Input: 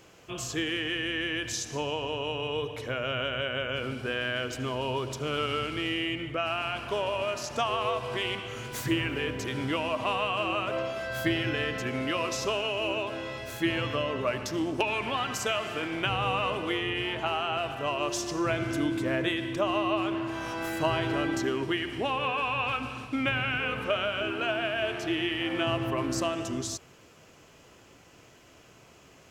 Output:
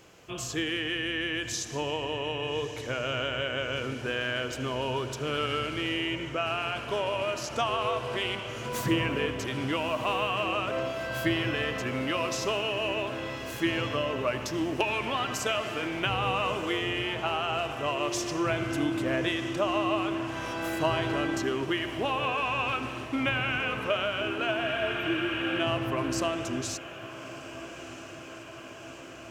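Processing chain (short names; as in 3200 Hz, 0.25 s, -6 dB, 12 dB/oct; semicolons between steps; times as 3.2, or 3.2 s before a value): 8.65–9.26 small resonant body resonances 200/500/980 Hz, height 9 dB; 24.66–25.57 spectral repair 970–12000 Hz before; on a send: diffused feedback echo 1.282 s, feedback 73%, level -15 dB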